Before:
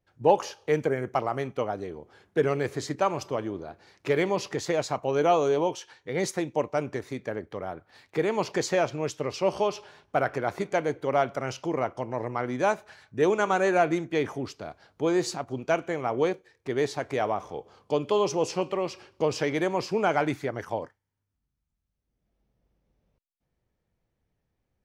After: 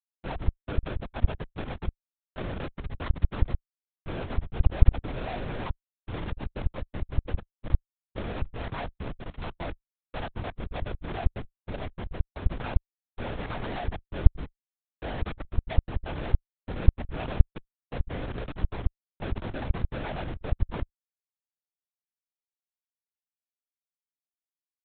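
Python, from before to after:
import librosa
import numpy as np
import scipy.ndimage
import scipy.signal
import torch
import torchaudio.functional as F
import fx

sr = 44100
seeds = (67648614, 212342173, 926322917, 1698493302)

y = fx.lower_of_two(x, sr, delay_ms=4.5)
y = fx.schmitt(y, sr, flips_db=-29.0)
y = fx.lpc_vocoder(y, sr, seeds[0], excitation='whisper', order=8)
y = F.gain(torch.from_numpy(y), -1.5).numpy()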